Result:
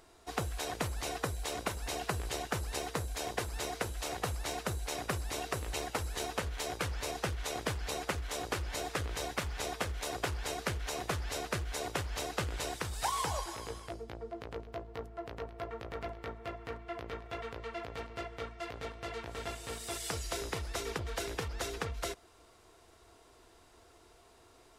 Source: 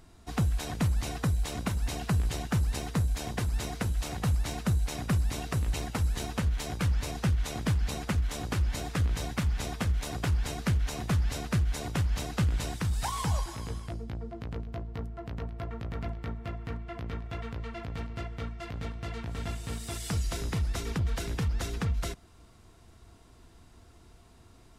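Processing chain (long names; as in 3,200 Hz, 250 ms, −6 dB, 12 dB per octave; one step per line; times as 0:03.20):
low shelf with overshoot 290 Hz −11 dB, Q 1.5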